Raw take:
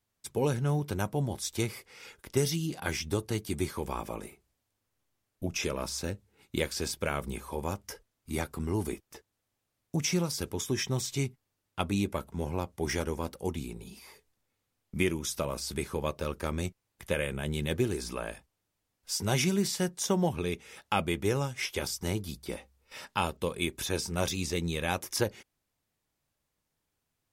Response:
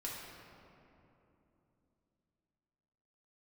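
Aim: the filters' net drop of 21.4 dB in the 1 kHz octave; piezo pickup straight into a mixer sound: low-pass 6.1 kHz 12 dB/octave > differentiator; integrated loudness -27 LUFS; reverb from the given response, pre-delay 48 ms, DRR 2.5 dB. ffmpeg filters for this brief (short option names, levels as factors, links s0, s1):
-filter_complex "[0:a]equalizer=f=1000:t=o:g=-5.5,asplit=2[s0][s1];[1:a]atrim=start_sample=2205,adelay=48[s2];[s1][s2]afir=irnorm=-1:irlink=0,volume=0.708[s3];[s0][s3]amix=inputs=2:normalize=0,lowpass=6100,aderivative,volume=6.31"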